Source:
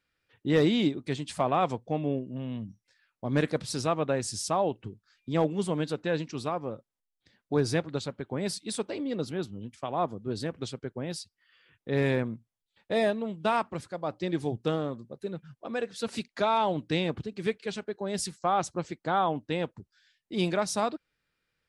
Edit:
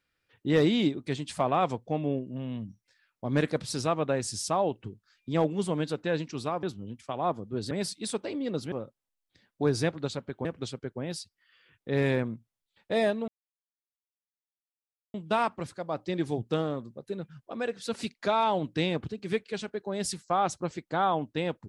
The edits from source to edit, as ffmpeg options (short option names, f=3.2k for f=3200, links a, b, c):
-filter_complex "[0:a]asplit=6[a][b][c][d][e][f];[a]atrim=end=6.632[g];[b]atrim=start=9.368:end=10.452[h];[c]atrim=start=8.358:end=9.372[i];[d]atrim=start=6.628:end=8.362[j];[e]atrim=start=10.448:end=13.28,asetpts=PTS-STARTPTS,afade=t=out:st=2.828:d=0.004:c=hsin,apad=pad_dur=1.86[k];[f]atrim=start=13.28,asetpts=PTS-STARTPTS,afade=t=in:d=0.004:c=hsin[l];[g][h]acrossfade=d=0.004:c1=hsin:c2=hsin[m];[m][i]acrossfade=d=0.004:c1=hsin:c2=hsin[n];[n][j]acrossfade=d=0.004:c1=hsin:c2=hsin[o];[k][l]concat=n=2:v=0:a=1[p];[o][p]acrossfade=d=0.004:c1=hsin:c2=hsin"